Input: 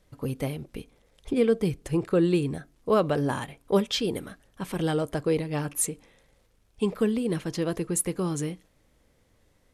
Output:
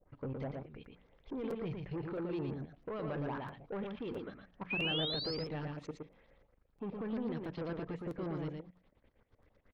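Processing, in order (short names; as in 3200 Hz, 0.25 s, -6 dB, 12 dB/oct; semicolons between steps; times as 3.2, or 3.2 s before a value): notches 60/120/180 Hz; level quantiser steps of 16 dB; limiter -27 dBFS, peak gain reduction 6.5 dB; LFO low-pass saw up 4.6 Hz 510–6400 Hz; soft clip -32.5 dBFS, distortion -13 dB; painted sound rise, 4.7–5.35, 2400–5300 Hz -31 dBFS; air absorption 250 m; echo 0.116 s -4 dB; crackling interface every 0.66 s, samples 256, repeat, from 0.84; gain -2 dB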